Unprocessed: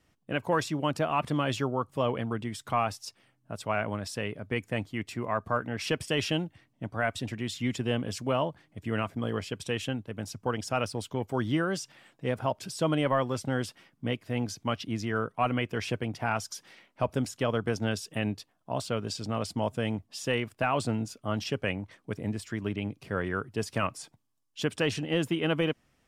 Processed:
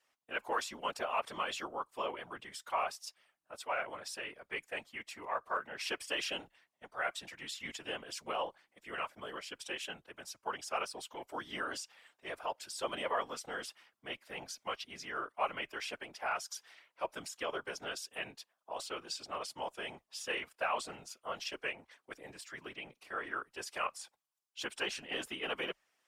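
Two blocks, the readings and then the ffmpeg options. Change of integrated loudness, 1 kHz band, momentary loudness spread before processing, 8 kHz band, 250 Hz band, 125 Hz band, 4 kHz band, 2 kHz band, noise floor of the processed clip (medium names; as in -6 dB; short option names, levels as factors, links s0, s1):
-8.5 dB, -5.5 dB, 8 LU, -4.0 dB, -20.0 dB, -28.5 dB, -4.5 dB, -4.5 dB, -84 dBFS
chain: -af "highpass=740,aeval=exprs='0.15*(cos(1*acos(clip(val(0)/0.15,-1,1)))-cos(1*PI/2))+0.0015*(cos(2*acos(clip(val(0)/0.15,-1,1)))-cos(2*PI/2))':c=same,afftfilt=real='hypot(re,im)*cos(2*PI*random(0))':imag='hypot(re,im)*sin(2*PI*random(1))':win_size=512:overlap=0.75,afreqshift=-29,volume=1.26"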